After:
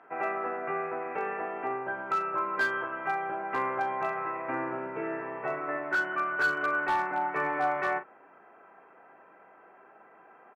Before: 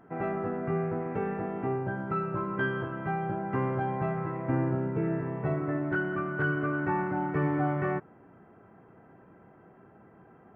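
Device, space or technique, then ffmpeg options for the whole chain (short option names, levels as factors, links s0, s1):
megaphone: -filter_complex "[0:a]highpass=690,lowpass=2800,equalizer=f=2500:t=o:w=0.2:g=8,asoftclip=type=hard:threshold=0.0422,asplit=2[s0][s1];[s1]adelay=39,volume=0.299[s2];[s0][s2]amix=inputs=2:normalize=0,volume=2"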